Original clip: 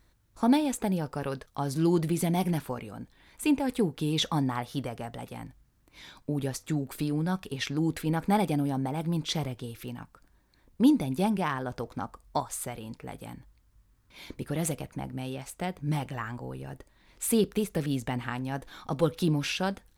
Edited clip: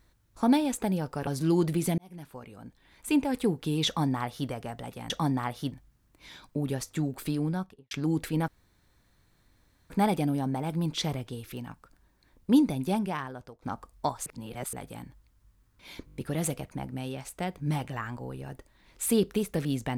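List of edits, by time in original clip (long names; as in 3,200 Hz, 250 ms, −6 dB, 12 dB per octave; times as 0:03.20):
0:01.27–0:01.62: remove
0:02.33–0:03.49: fade in
0:04.22–0:04.84: duplicate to 0:05.45
0:07.14–0:07.64: fade out and dull
0:08.21: splice in room tone 1.42 s
0:10.84–0:11.93: fade out equal-power, to −22.5 dB
0:12.57–0:13.04: reverse
0:14.37: stutter 0.02 s, 6 plays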